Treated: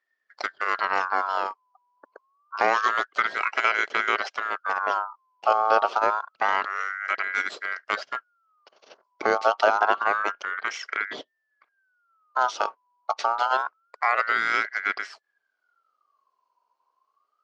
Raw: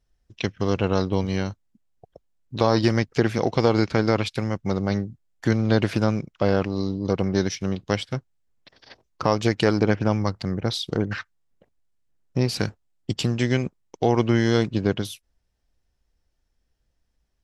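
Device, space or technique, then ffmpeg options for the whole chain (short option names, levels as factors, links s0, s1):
voice changer toy: -af "aeval=exprs='val(0)*sin(2*PI*1400*n/s+1400*0.3/0.27*sin(2*PI*0.27*n/s))':c=same,highpass=410,equalizer=f=420:t=q:w=4:g=5,equalizer=f=640:t=q:w=4:g=4,equalizer=f=940:t=q:w=4:g=-3,equalizer=f=1800:t=q:w=4:g=-10,equalizer=f=2500:t=q:w=4:g=-5,equalizer=f=3700:t=q:w=4:g=-9,lowpass=f=4800:w=0.5412,lowpass=f=4800:w=1.3066,volume=1.5"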